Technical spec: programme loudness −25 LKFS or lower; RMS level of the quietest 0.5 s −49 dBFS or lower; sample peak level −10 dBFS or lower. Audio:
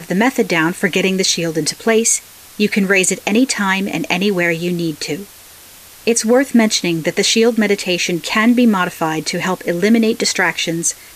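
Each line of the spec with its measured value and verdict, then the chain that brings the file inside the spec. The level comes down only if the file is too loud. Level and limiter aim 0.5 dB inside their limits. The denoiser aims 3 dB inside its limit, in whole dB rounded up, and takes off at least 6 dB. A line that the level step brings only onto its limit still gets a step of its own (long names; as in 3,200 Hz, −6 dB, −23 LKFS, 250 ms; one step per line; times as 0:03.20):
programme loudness −15.5 LKFS: out of spec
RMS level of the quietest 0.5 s −40 dBFS: out of spec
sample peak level −3.0 dBFS: out of spec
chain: level −10 dB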